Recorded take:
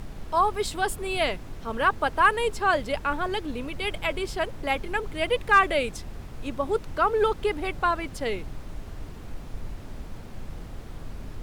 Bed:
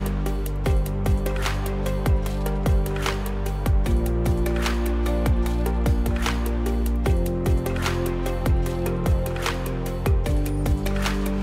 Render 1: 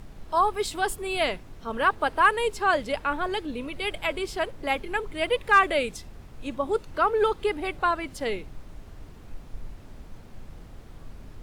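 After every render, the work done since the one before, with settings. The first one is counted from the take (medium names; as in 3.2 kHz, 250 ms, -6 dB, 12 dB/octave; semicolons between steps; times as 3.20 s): noise print and reduce 6 dB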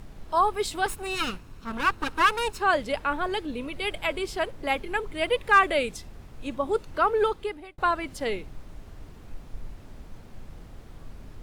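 0.86–2.60 s: comb filter that takes the minimum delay 0.75 ms; 7.18–7.78 s: fade out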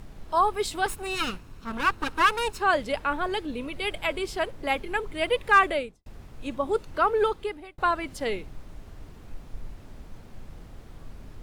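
5.63–6.06 s: studio fade out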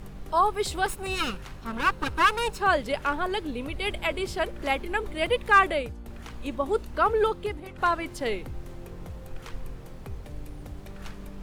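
add bed -19 dB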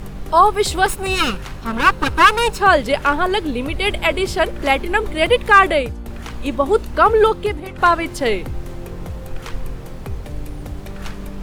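trim +10.5 dB; peak limiter -1 dBFS, peak gain reduction 3 dB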